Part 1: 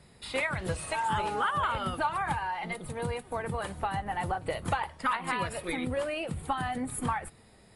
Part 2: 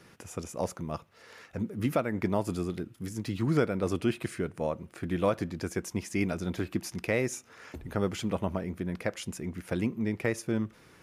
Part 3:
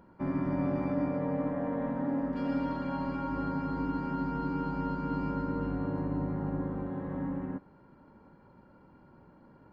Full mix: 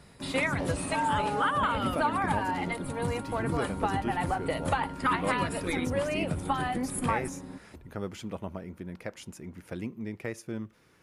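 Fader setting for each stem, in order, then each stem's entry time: +1.5 dB, -6.5 dB, -6.5 dB; 0.00 s, 0.00 s, 0.00 s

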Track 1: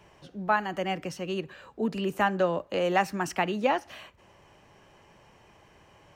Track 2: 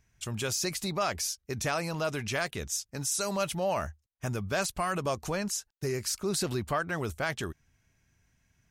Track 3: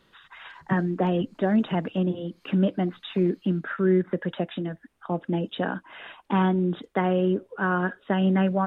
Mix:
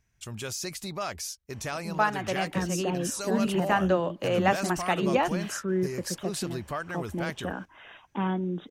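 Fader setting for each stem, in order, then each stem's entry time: 0.0 dB, -3.5 dB, -6.5 dB; 1.50 s, 0.00 s, 1.85 s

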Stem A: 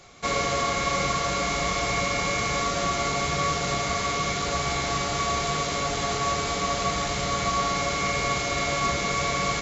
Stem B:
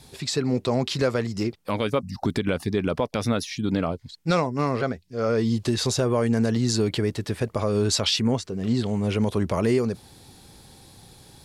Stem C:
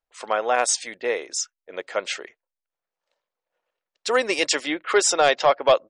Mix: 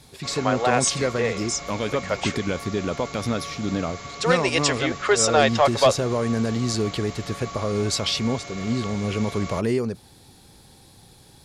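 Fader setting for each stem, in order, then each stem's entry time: -11.0 dB, -1.5 dB, -0.5 dB; 0.00 s, 0.00 s, 0.15 s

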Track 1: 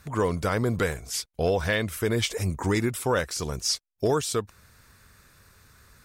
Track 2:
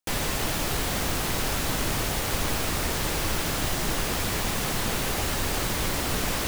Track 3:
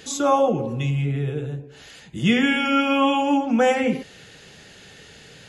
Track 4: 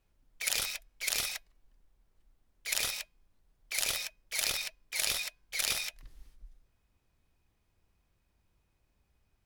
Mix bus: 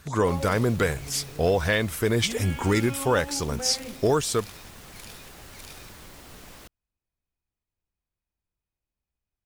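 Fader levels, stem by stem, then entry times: +2.0 dB, -19.0 dB, -18.0 dB, -15.5 dB; 0.00 s, 0.20 s, 0.00 s, 0.00 s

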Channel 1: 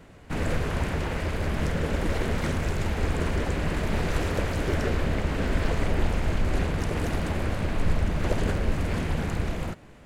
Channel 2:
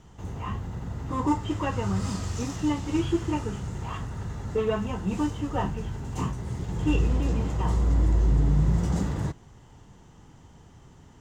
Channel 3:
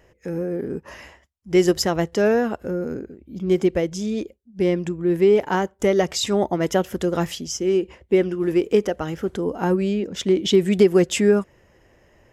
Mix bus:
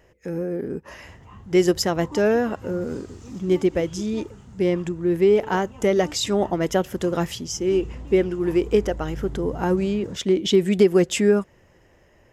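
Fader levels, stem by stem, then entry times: mute, -12.5 dB, -1.0 dB; mute, 0.85 s, 0.00 s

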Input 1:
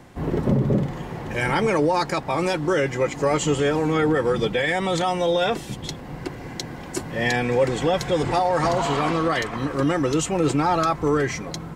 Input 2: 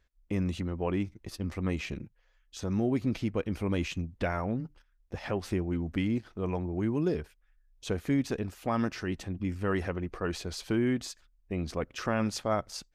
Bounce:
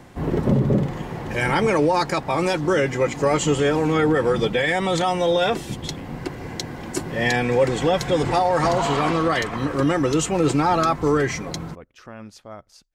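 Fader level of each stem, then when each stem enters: +1.5 dB, -10.0 dB; 0.00 s, 0.00 s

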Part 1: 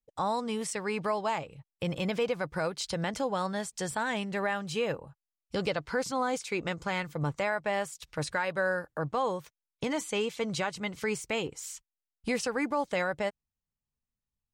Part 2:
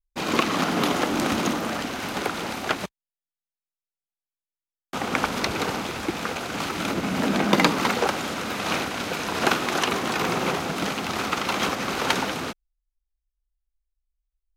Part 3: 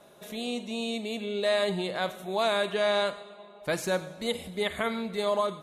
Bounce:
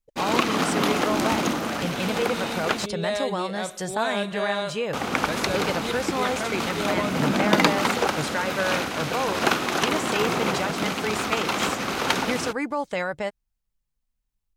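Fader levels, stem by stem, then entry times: +2.5 dB, 0.0 dB, -2.0 dB; 0.00 s, 0.00 s, 1.60 s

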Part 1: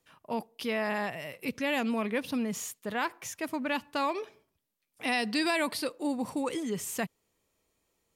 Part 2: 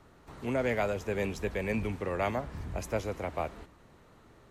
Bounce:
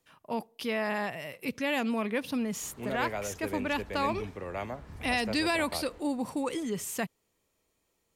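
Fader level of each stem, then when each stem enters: 0.0 dB, -5.5 dB; 0.00 s, 2.35 s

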